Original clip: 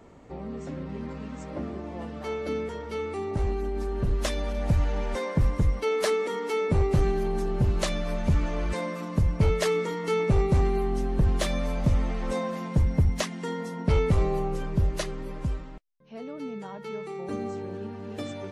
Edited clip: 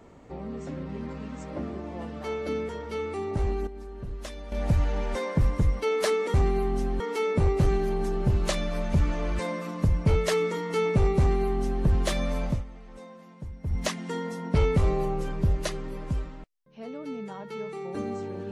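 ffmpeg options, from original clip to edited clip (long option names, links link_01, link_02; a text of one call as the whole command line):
ffmpeg -i in.wav -filter_complex "[0:a]asplit=7[link_01][link_02][link_03][link_04][link_05][link_06][link_07];[link_01]atrim=end=3.672[link_08];[link_02]atrim=start=3.668:end=4.522,asetpts=PTS-STARTPTS,volume=-10.5dB[link_09];[link_03]atrim=start=4.518:end=6.342[link_10];[link_04]atrim=start=10.528:end=11.192[link_11];[link_05]atrim=start=6.338:end=11.98,asetpts=PTS-STARTPTS,afade=type=out:start_time=5.442:duration=0.2:silence=0.149624[link_12];[link_06]atrim=start=11.98:end=12.97,asetpts=PTS-STARTPTS,volume=-16.5dB[link_13];[link_07]atrim=start=12.97,asetpts=PTS-STARTPTS,afade=type=in:duration=0.2:silence=0.149624[link_14];[link_08][link_09]acrossfade=duration=0.004:curve1=hsin:curve2=hsin[link_15];[link_15][link_10]acrossfade=duration=0.004:curve1=hsin:curve2=hsin[link_16];[link_16][link_11]acrossfade=duration=0.004:curve1=hsin:curve2=hsin[link_17];[link_12][link_13][link_14]concat=n=3:v=0:a=1[link_18];[link_17][link_18]acrossfade=duration=0.004:curve1=hsin:curve2=hsin" out.wav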